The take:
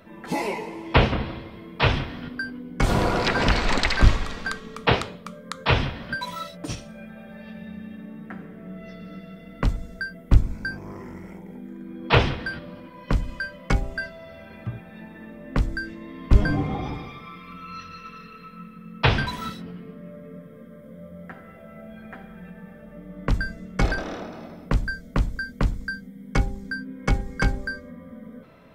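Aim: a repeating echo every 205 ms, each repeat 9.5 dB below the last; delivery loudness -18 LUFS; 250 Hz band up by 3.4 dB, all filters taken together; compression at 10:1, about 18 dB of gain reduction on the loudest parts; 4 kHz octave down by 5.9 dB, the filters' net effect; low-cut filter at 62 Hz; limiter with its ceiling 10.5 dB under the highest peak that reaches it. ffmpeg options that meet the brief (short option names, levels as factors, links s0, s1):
-af "highpass=62,equalizer=f=250:t=o:g=4.5,equalizer=f=4000:t=o:g=-8,acompressor=threshold=0.0282:ratio=10,alimiter=level_in=1.26:limit=0.0631:level=0:latency=1,volume=0.794,aecho=1:1:205|410|615|820:0.335|0.111|0.0365|0.012,volume=9.44"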